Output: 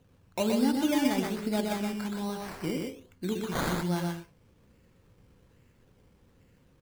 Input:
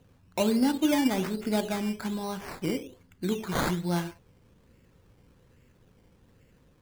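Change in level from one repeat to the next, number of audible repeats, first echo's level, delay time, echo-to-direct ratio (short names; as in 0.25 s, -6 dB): no steady repeat, 2, -3.5 dB, 0.123 s, -3.5 dB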